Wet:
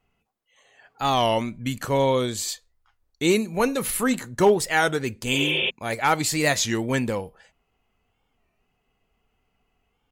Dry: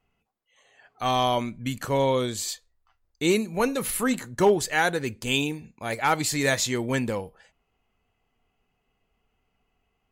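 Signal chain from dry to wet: spectral replace 5.36–5.67 s, 310–3900 Hz before; warped record 33 1/3 rpm, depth 160 cents; trim +2 dB

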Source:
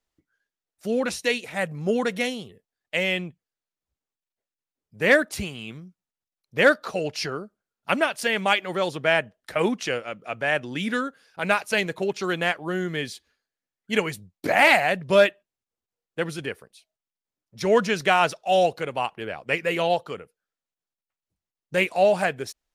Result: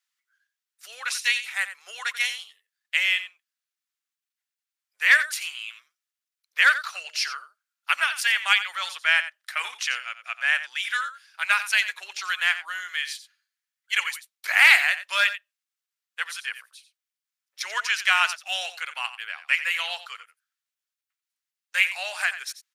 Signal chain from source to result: high-pass 1.3 kHz 24 dB/octave; on a send: delay 89 ms -13 dB; on the sum: trim +4 dB

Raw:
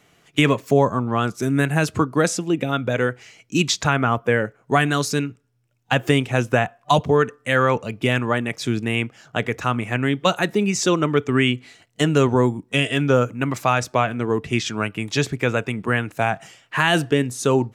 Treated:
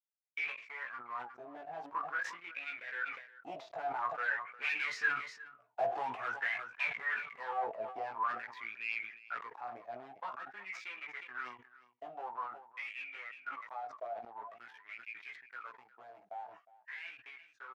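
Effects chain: one-sided wavefolder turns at -13.5 dBFS; Doppler pass-by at 5.52 s, 8 m/s, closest 2.3 m; low-pass 4.6 kHz 12 dB/octave; expander -57 dBFS; bass shelf 310 Hz -9 dB; in parallel at -2 dB: compression, threshold -53 dBFS, peak gain reduction 28 dB; on the sum: waveshaping leveller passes 3; saturation -26.5 dBFS, distortion -8 dB; chorus 0.19 Hz, delay 15.5 ms, depth 2.7 ms; wah-wah 0.48 Hz 660–2400 Hz, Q 16; on a send: delay 359 ms -19.5 dB; on the sum: decay stretcher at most 91 dB/s; trim +14.5 dB

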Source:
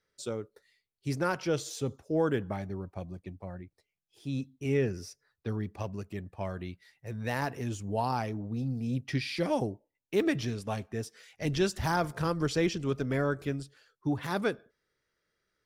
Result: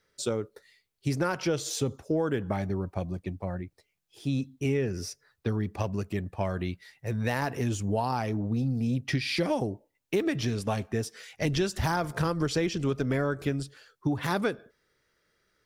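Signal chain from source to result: compression, threshold -32 dBFS, peak gain reduction 10 dB; trim +8 dB

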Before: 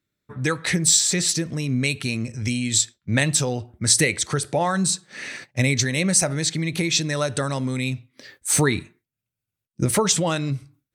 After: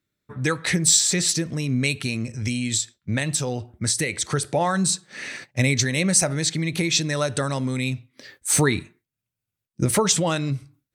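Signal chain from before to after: 2.05–4.25 s: compression, threshold -20 dBFS, peak gain reduction 8 dB

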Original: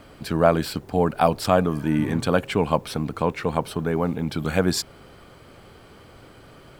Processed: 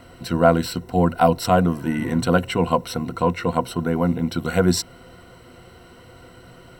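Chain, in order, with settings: rippled EQ curve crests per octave 2, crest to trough 13 dB

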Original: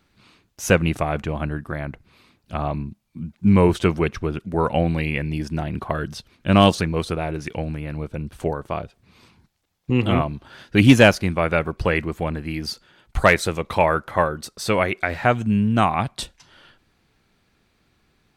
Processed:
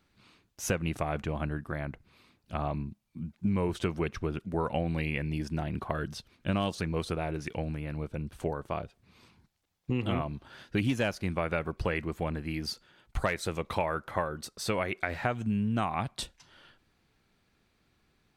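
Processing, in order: compression 6:1, threshold -19 dBFS, peak gain reduction 12 dB; trim -6.5 dB

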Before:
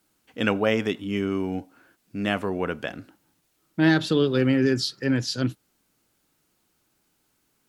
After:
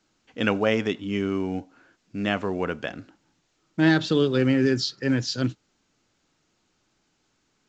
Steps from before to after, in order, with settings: µ-law 128 kbps 16 kHz

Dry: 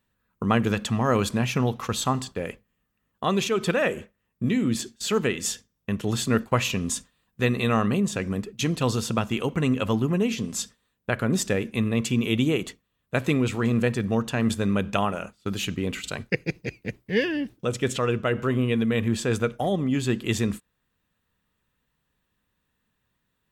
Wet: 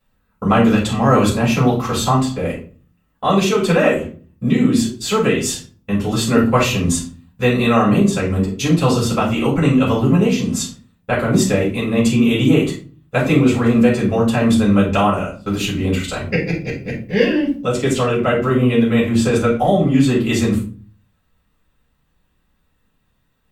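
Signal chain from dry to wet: simulated room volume 250 m³, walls furnished, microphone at 6.8 m; trim -3.5 dB

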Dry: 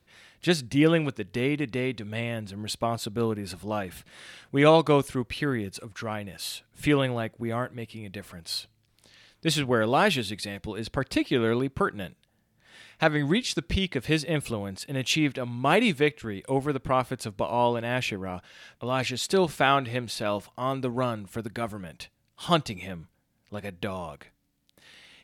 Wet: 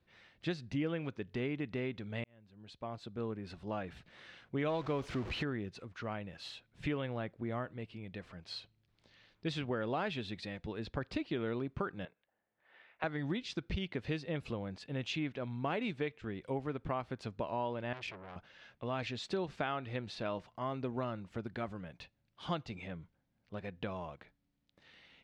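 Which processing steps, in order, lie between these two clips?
2.24–3.84 s: fade in; 4.69–5.43 s: jump at every zero crossing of -27.5 dBFS; 12.05–13.04 s: three-band isolator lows -21 dB, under 370 Hz, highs -23 dB, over 2.9 kHz; compression 4:1, threshold -26 dBFS, peak gain reduction 11.5 dB; distance through air 160 m; 17.93–18.36 s: transformer saturation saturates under 3 kHz; trim -6.5 dB

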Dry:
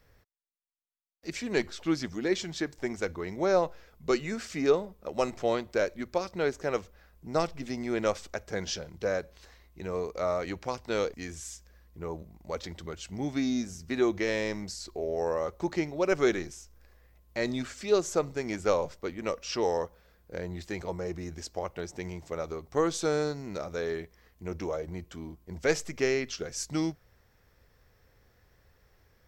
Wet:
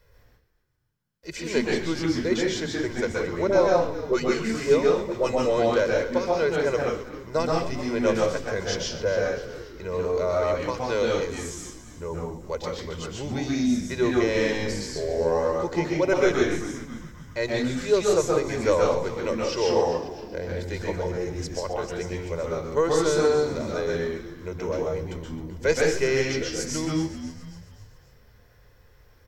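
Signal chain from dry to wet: 3.47–5.73 s: phase dispersion highs, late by 54 ms, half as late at 670 Hz; frequency-shifting echo 266 ms, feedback 52%, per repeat -74 Hz, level -13.5 dB; reverberation RT60 0.40 s, pre-delay 122 ms, DRR -1.5 dB

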